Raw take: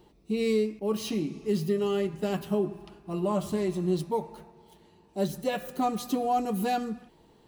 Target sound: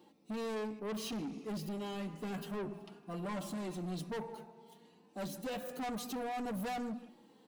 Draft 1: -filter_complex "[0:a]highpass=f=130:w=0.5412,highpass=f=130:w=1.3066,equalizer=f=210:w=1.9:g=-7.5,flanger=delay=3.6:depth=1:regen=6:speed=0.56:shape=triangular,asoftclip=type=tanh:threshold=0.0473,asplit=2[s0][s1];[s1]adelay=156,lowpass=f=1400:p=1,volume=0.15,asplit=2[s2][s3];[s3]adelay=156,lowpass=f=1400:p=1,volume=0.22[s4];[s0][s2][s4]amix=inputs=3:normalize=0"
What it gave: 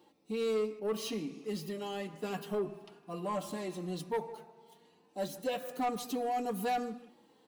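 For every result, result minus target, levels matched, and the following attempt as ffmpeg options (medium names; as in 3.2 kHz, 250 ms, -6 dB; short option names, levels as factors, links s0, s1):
saturation: distortion -9 dB; 250 Hz band -3.5 dB
-filter_complex "[0:a]highpass=f=130:w=0.5412,highpass=f=130:w=1.3066,equalizer=f=210:w=1.9:g=-7.5,flanger=delay=3.6:depth=1:regen=6:speed=0.56:shape=triangular,asoftclip=type=tanh:threshold=0.015,asplit=2[s0][s1];[s1]adelay=156,lowpass=f=1400:p=1,volume=0.15,asplit=2[s2][s3];[s3]adelay=156,lowpass=f=1400:p=1,volume=0.22[s4];[s0][s2][s4]amix=inputs=3:normalize=0"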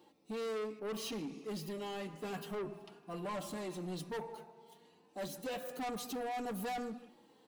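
250 Hz band -2.5 dB
-filter_complex "[0:a]highpass=f=130:w=0.5412,highpass=f=130:w=1.3066,flanger=delay=3.6:depth=1:regen=6:speed=0.56:shape=triangular,asoftclip=type=tanh:threshold=0.015,asplit=2[s0][s1];[s1]adelay=156,lowpass=f=1400:p=1,volume=0.15,asplit=2[s2][s3];[s3]adelay=156,lowpass=f=1400:p=1,volume=0.22[s4];[s0][s2][s4]amix=inputs=3:normalize=0"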